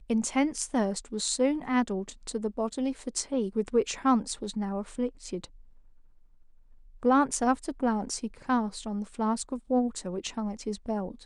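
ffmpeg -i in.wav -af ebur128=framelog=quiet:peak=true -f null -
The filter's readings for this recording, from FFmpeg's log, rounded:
Integrated loudness:
  I:         -29.6 LUFS
  Threshold: -40.0 LUFS
Loudness range:
  LRA:         3.1 LU
  Threshold: -50.3 LUFS
  LRA low:   -31.9 LUFS
  LRA high:  -28.8 LUFS
True peak:
  Peak:      -12.0 dBFS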